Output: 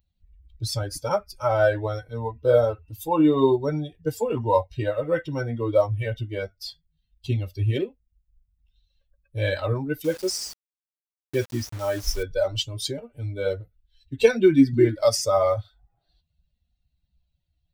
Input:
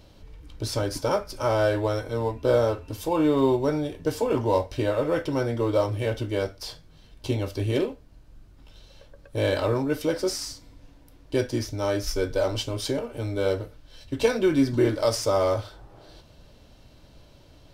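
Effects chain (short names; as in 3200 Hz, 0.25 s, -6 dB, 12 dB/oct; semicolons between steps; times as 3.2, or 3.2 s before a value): per-bin expansion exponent 2; 10.04–12.23 requantised 8-bit, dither none; gain +7 dB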